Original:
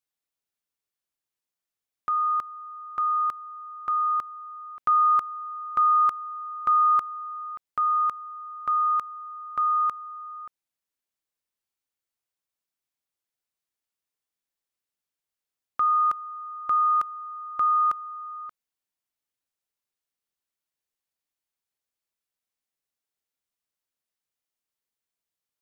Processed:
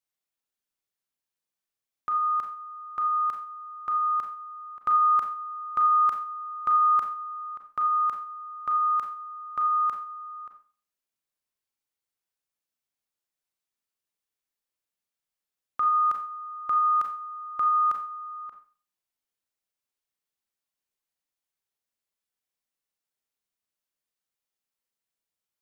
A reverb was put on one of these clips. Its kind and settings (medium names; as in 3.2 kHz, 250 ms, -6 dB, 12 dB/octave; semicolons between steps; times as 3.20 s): Schroeder reverb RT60 0.4 s, combs from 29 ms, DRR 3.5 dB; trim -2.5 dB